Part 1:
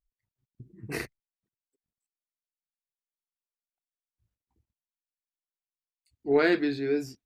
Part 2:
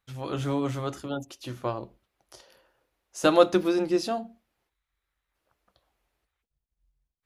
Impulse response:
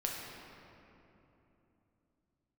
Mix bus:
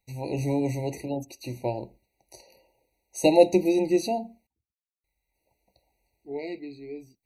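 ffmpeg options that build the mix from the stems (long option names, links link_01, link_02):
-filter_complex "[0:a]volume=-11.5dB[link_01];[1:a]highshelf=frequency=8500:gain=7.5,volume=2dB,asplit=3[link_02][link_03][link_04];[link_02]atrim=end=4.47,asetpts=PTS-STARTPTS,afade=type=out:start_time=4.466:duration=0.004:curve=hsin[link_05];[link_03]atrim=start=4.47:end=5.04,asetpts=PTS-STARTPTS,volume=0[link_06];[link_04]atrim=start=5.04,asetpts=PTS-STARTPTS,afade=type=in:duration=0.004:curve=hsin[link_07];[link_05][link_06][link_07]concat=n=3:v=0:a=1[link_08];[link_01][link_08]amix=inputs=2:normalize=0,afftfilt=real='re*eq(mod(floor(b*sr/1024/950),2),0)':imag='im*eq(mod(floor(b*sr/1024/950),2),0)':win_size=1024:overlap=0.75"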